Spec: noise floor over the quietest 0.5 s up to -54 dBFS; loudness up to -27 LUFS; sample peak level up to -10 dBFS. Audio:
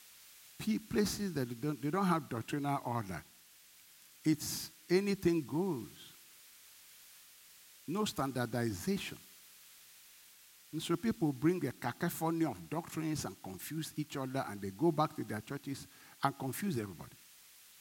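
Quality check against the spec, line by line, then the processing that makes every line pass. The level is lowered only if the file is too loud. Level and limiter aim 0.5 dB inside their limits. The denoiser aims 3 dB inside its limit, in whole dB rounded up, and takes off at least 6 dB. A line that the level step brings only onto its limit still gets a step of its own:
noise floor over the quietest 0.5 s -61 dBFS: pass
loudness -36.5 LUFS: pass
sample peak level -15.0 dBFS: pass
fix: none needed

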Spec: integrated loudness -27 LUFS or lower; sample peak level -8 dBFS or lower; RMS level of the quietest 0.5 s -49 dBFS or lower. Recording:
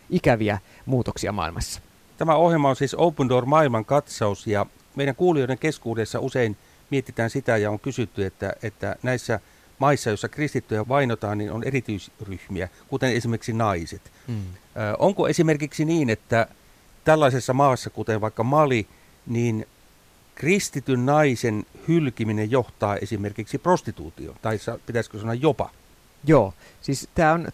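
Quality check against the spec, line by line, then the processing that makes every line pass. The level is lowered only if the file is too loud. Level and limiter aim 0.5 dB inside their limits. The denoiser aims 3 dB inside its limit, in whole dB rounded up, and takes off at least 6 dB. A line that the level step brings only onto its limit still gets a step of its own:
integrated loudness -23.5 LUFS: fail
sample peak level -6.0 dBFS: fail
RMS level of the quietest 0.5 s -54 dBFS: pass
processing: trim -4 dB

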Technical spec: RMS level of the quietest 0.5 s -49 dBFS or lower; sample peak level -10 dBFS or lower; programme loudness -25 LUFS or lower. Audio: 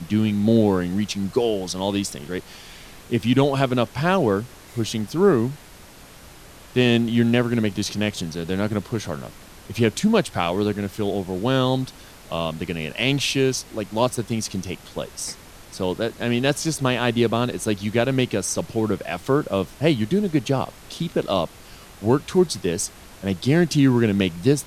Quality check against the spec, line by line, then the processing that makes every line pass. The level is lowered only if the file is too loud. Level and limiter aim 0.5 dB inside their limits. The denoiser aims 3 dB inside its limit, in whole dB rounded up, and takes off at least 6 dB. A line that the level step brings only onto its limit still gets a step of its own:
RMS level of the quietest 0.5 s -45 dBFS: fail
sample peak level -5.0 dBFS: fail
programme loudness -22.5 LUFS: fail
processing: noise reduction 6 dB, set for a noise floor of -45 dBFS; trim -3 dB; peak limiter -10.5 dBFS

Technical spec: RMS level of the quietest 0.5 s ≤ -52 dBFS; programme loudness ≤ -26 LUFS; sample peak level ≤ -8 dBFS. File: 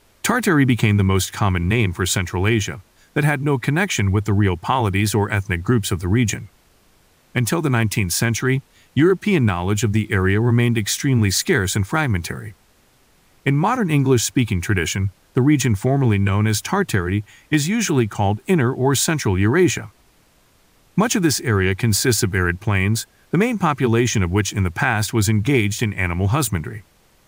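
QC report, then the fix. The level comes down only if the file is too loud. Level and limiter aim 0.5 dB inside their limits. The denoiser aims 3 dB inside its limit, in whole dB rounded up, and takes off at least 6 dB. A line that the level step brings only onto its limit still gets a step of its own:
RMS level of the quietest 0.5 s -56 dBFS: pass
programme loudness -19.0 LUFS: fail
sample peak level -5.0 dBFS: fail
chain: trim -7.5 dB

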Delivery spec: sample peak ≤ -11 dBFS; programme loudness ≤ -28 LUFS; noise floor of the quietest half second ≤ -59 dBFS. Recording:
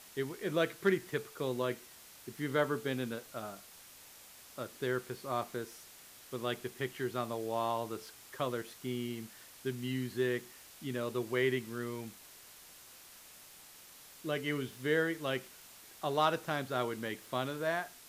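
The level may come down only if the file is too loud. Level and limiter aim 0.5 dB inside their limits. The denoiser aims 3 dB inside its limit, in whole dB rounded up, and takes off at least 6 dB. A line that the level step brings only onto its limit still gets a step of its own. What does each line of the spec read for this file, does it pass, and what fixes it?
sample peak -16.0 dBFS: pass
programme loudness -36.0 LUFS: pass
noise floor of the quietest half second -55 dBFS: fail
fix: noise reduction 7 dB, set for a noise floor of -55 dBFS

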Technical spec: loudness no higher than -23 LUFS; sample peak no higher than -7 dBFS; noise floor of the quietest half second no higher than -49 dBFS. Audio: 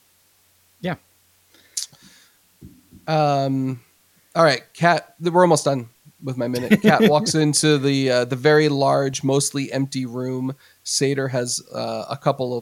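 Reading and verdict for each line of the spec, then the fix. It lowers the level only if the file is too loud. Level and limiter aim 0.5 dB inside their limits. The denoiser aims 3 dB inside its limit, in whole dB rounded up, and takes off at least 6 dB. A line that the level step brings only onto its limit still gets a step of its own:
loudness -20.0 LUFS: fail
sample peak -2.5 dBFS: fail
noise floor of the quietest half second -59 dBFS: pass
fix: trim -3.5 dB; peak limiter -7.5 dBFS

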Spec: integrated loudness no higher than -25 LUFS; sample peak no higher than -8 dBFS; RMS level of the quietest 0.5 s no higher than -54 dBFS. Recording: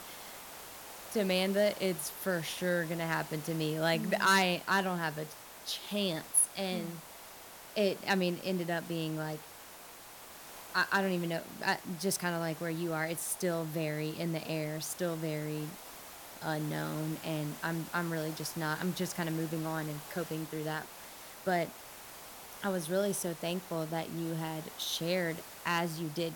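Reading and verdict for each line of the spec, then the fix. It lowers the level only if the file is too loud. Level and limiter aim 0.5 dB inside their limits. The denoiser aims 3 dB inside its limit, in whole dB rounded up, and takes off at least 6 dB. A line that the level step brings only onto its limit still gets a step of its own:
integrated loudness -34.0 LUFS: pass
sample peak -15.0 dBFS: pass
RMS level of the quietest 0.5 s -51 dBFS: fail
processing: noise reduction 6 dB, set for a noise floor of -51 dBFS

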